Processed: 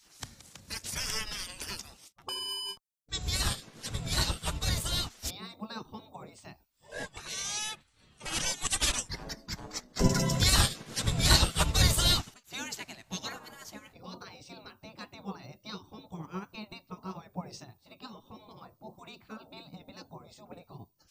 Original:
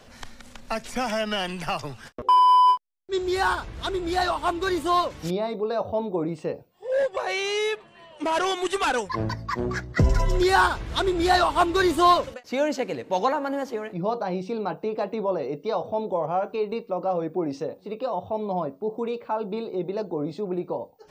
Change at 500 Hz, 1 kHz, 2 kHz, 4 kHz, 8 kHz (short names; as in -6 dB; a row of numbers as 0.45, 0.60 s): -18.0, -18.5, -8.5, +1.5, +8.5 dB